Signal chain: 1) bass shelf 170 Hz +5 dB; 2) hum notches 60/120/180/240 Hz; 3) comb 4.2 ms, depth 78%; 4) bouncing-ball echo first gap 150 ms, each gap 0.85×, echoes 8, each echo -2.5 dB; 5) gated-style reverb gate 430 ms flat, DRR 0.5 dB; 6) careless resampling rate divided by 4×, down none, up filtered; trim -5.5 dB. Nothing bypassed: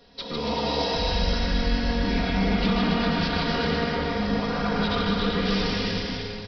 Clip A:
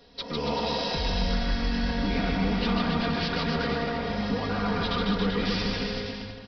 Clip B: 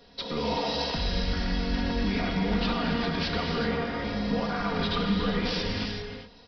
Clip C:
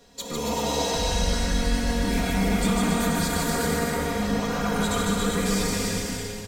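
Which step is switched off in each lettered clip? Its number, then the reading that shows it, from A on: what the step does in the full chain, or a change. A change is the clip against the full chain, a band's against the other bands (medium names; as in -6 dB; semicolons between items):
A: 5, loudness change -2.5 LU; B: 4, loudness change -3.5 LU; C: 6, 4 kHz band -2.0 dB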